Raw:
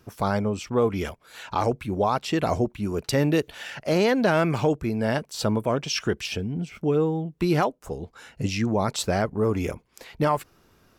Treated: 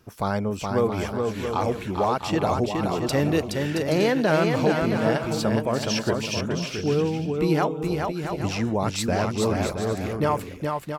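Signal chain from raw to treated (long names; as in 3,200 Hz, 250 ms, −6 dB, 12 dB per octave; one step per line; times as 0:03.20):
bouncing-ball delay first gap 420 ms, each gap 0.6×, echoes 5
level −1 dB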